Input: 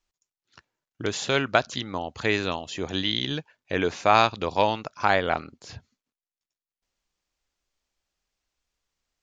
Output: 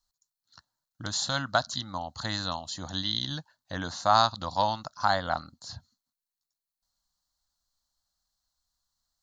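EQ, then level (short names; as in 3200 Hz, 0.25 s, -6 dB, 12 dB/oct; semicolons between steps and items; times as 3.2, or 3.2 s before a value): bell 4200 Hz +12 dB 0.26 oct; high shelf 6200 Hz +8 dB; fixed phaser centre 1000 Hz, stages 4; -1.5 dB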